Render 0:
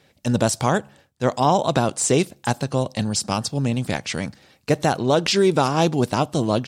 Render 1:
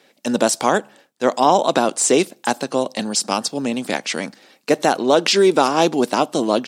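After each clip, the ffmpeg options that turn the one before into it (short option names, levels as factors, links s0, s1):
-af "highpass=f=230:w=0.5412,highpass=f=230:w=1.3066,volume=1.58"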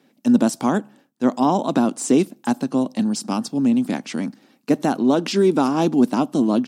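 -af "equalizer=f=125:t=o:w=1:g=6,equalizer=f=250:t=o:w=1:g=11,equalizer=f=500:t=o:w=1:g=-6,equalizer=f=2000:t=o:w=1:g=-5,equalizer=f=4000:t=o:w=1:g=-5,equalizer=f=8000:t=o:w=1:g=-5,volume=0.631"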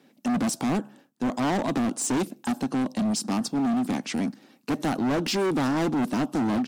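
-af "asoftclip=type=hard:threshold=0.075"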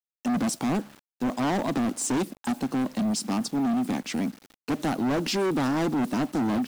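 -af "acrusher=bits=7:mix=0:aa=0.000001,volume=0.891"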